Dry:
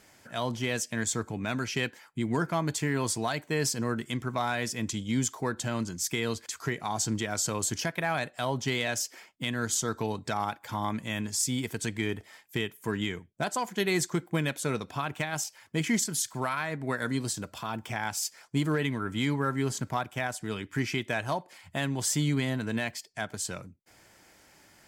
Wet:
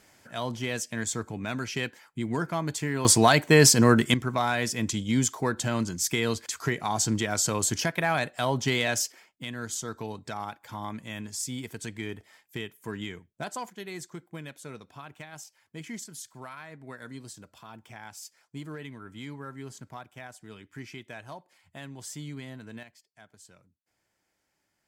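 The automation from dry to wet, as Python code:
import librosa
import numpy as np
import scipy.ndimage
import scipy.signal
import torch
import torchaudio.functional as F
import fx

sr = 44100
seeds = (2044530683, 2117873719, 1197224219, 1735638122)

y = fx.gain(x, sr, db=fx.steps((0.0, -1.0), (3.05, 12.0), (4.14, 3.5), (9.12, -5.0), (13.7, -12.0), (22.83, -19.5)))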